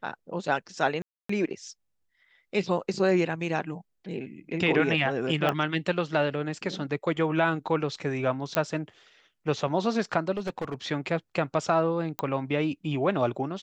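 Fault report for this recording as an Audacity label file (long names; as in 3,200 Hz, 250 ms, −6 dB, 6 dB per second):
1.020000	1.290000	drop-out 274 ms
5.490000	5.490000	click −14 dBFS
8.550000	8.550000	click −9 dBFS
10.370000	10.740000	clipping −26 dBFS
12.190000	12.190000	click −14 dBFS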